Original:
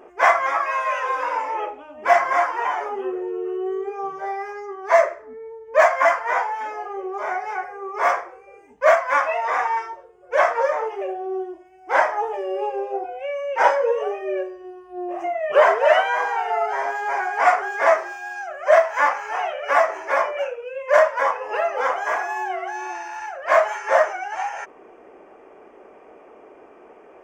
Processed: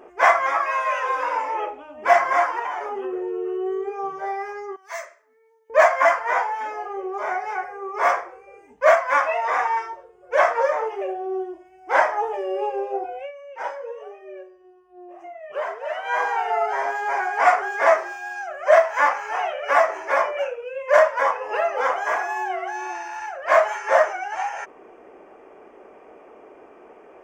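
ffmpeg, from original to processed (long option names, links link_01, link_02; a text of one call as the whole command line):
ffmpeg -i in.wav -filter_complex "[0:a]asettb=1/sr,asplit=3[link_01][link_02][link_03];[link_01]atrim=end=2.594[link_04];[link_02]atrim=start=2.59:end=3.13,asetpts=PTS-STARTPTS,afade=type=in:duration=0.004:curve=qsin,afade=type=out:start_time=0.536:duration=0.004:curve=qsin,acompressor=threshold=-25dB:ratio=3:attack=3.2:release=140:knee=1:detection=peak[link_05];[link_03]atrim=start=3.126[link_06];[link_04][link_05]acrossfade=duration=0.004:curve1=hsin:curve2=qsin[link_07];[link_07][link_06]acrossfade=duration=0.004:curve1=qsin:curve2=hsin,asettb=1/sr,asplit=3[link_08][link_09][link_10];[link_08]atrim=end=4.764[link_11];[link_09]atrim=start=4.76:end=5.7,asetpts=PTS-STARTPTS,afade=type=in:duration=0.004:curve=qsin,afade=type=out:start_time=0.936:duration=0.004:curve=qsin,aderivative[link_12];[link_10]atrim=start=5.696[link_13];[link_11][link_12]acrossfade=duration=0.004:curve1=hsin:curve2=qsin[link_14];[link_14][link_13]acrossfade=duration=0.004:curve1=qsin:curve2=hsin,asplit=3[link_15][link_16][link_17];[link_15]atrim=end=13.32,asetpts=PTS-STARTPTS,afade=type=out:start_time=13.19:duration=0.13:silence=0.211349[link_18];[link_16]atrim=start=13.32:end=16.02,asetpts=PTS-STARTPTS,volume=-13.5dB[link_19];[link_17]atrim=start=16.02,asetpts=PTS-STARTPTS,afade=type=in:duration=0.13:silence=0.211349[link_20];[link_18][link_19][link_20]concat=n=3:v=0:a=1" out.wav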